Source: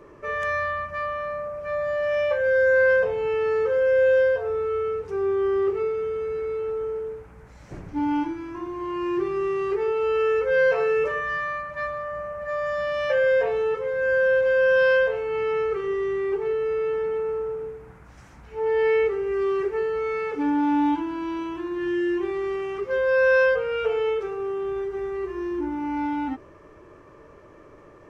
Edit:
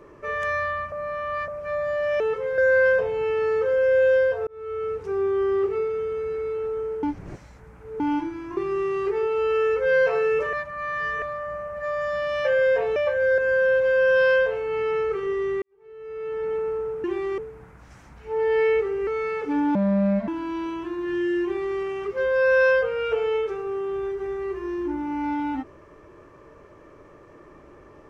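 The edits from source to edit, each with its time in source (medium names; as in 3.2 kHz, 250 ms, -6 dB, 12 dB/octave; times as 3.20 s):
0.92–1.48 s: reverse
2.20–2.62 s: swap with 13.61–13.99 s
4.51–4.97 s: fade in
7.07–8.04 s: reverse
8.61–9.22 s: delete
11.18–11.87 s: reverse
16.23–17.13 s: fade in quadratic
19.34–19.97 s: delete
20.65–21.01 s: speed 68%
22.16–22.50 s: copy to 17.65 s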